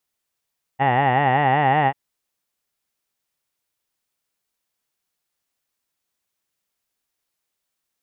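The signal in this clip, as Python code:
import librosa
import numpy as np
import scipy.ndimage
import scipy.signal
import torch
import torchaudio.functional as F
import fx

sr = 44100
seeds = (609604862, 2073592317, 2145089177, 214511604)

y = fx.formant_vowel(sr, seeds[0], length_s=1.14, hz=129.0, glide_st=2.0, vibrato_hz=5.3, vibrato_st=1.4, f1_hz=800.0, f2_hz=1900.0, f3_hz=2800.0)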